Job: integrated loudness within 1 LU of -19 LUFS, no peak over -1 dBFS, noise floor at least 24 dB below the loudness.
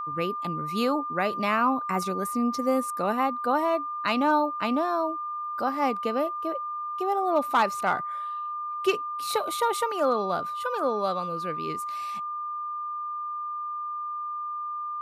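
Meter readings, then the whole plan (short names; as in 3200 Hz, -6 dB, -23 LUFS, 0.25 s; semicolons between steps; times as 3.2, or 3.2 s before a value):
steady tone 1200 Hz; tone level -30 dBFS; loudness -27.5 LUFS; peak -12.0 dBFS; loudness target -19.0 LUFS
-> notch 1200 Hz, Q 30; gain +8.5 dB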